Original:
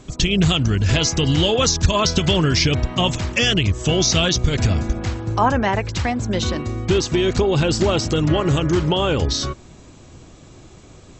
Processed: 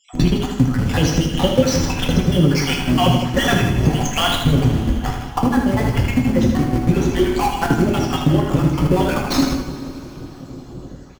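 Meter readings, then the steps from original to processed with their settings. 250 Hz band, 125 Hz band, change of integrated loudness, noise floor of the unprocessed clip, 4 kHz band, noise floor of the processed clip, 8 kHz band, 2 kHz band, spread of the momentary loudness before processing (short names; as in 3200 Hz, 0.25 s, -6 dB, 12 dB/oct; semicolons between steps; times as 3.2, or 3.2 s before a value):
+4.5 dB, +1.5 dB, +1.0 dB, -45 dBFS, -3.5 dB, -37 dBFS, -4.5 dB, 0.0 dB, 6 LU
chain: random spectral dropouts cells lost 64%; high shelf 2000 Hz -11.5 dB; in parallel at -5 dB: Schmitt trigger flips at -31.5 dBFS; on the sum: bell 250 Hz +9 dB 0.6 oct; compressor, threshold -22 dBFS, peak gain reduction 13 dB; notch 3800 Hz, Q 13; on a send: tapped delay 78/160 ms -6.5/-9.5 dB; on the sum: two-slope reverb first 0.39 s, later 4.1 s, from -18 dB, DRR 1 dB; gain +6.5 dB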